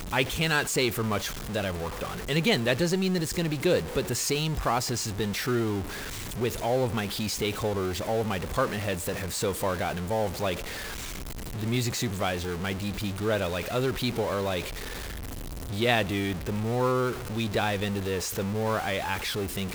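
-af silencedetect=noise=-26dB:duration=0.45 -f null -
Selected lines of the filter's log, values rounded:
silence_start: 5.80
silence_end: 6.40 | silence_duration: 0.60
silence_start: 10.54
silence_end: 11.63 | silence_duration: 1.09
silence_start: 14.60
silence_end: 15.79 | silence_duration: 1.18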